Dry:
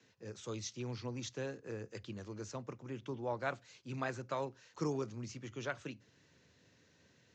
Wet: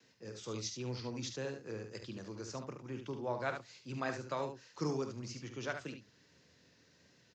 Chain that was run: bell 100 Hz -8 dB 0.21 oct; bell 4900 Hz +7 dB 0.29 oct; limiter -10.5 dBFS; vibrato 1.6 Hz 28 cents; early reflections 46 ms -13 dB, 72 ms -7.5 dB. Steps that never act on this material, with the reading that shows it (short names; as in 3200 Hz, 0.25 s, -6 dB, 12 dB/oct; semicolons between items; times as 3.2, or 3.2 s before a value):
limiter -10.5 dBFS: input peak -21.5 dBFS